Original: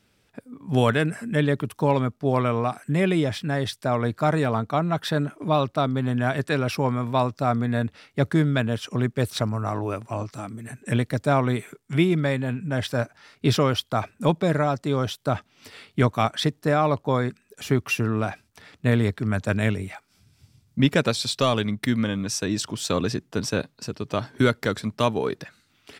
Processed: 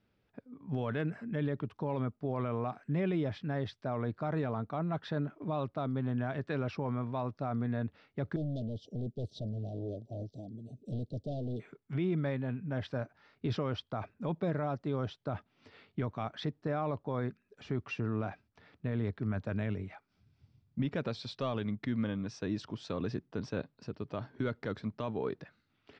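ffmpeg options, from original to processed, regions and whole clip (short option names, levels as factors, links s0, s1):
-filter_complex "[0:a]asettb=1/sr,asplit=3[s0][s1][s2];[s0]atrim=end=8.364[s3];[s1]atrim=start=8.36:end=11.6,asetpts=PTS-STARTPTS,afade=t=in:d=0.004:c=qsin,afade=t=out:st=3.236:d=0.004:c=qsin,volume=15.8,asoftclip=hard,volume=0.0631,asuperstop=centerf=1500:order=12:qfactor=0.57[s4];[s2]atrim=start=11.596[s5];[s3][s4]acrossfade=d=0.004:c1=hsin:c2=qsin[s6];[s6][s5]acrossfade=d=0.004:c1=qsin:c2=hsin,lowpass=f=5200:w=0.5412,lowpass=f=5200:w=1.3066,highshelf=f=2100:g=-10.5,alimiter=limit=0.168:level=0:latency=1:release=25,volume=0.376"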